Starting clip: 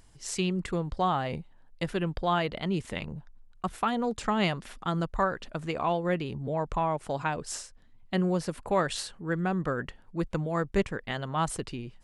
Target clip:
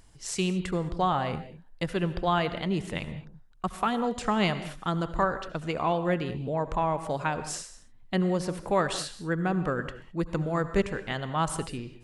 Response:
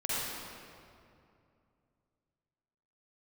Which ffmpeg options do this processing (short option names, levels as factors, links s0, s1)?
-filter_complex "[0:a]asplit=2[s0][s1];[1:a]atrim=start_sample=2205,atrim=end_sample=6615,asetrate=29547,aresample=44100[s2];[s1][s2]afir=irnorm=-1:irlink=0,volume=0.126[s3];[s0][s3]amix=inputs=2:normalize=0"